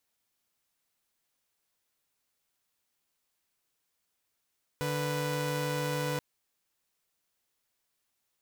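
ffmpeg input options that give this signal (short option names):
-f lavfi -i "aevalsrc='0.0316*((2*mod(146.83*t,1)-1)+(2*mod(493.88*t,1)-1))':d=1.38:s=44100"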